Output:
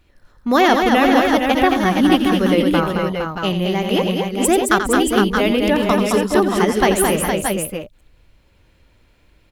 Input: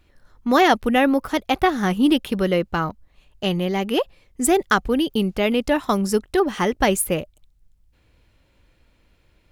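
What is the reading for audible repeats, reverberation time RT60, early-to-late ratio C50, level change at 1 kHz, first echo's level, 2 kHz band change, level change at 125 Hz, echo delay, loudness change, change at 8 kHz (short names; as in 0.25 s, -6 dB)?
5, none, none, +4.5 dB, -9.0 dB, +5.0 dB, +5.0 dB, 85 ms, +4.0 dB, +4.5 dB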